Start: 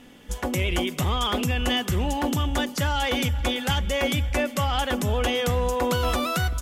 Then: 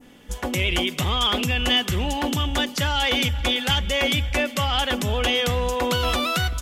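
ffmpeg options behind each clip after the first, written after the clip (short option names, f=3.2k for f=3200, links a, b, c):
-af "adynamicequalizer=threshold=0.00794:dfrequency=3200:dqfactor=0.83:tfrequency=3200:tqfactor=0.83:attack=5:release=100:ratio=0.375:range=3.5:mode=boostabove:tftype=bell"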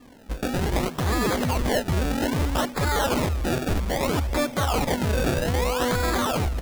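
-af "alimiter=limit=-14.5dB:level=0:latency=1:release=87,acrusher=samples=29:mix=1:aa=0.000001:lfo=1:lforange=29:lforate=0.62"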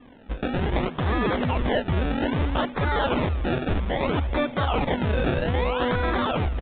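-af "aresample=8000,aresample=44100"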